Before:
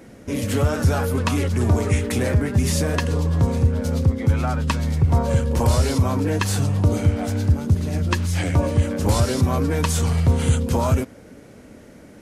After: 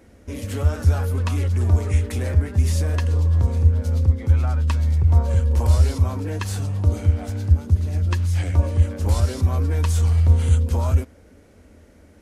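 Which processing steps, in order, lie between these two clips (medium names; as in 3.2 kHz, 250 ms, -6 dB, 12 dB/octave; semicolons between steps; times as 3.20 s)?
resonant low shelf 100 Hz +6.5 dB, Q 3; trim -7 dB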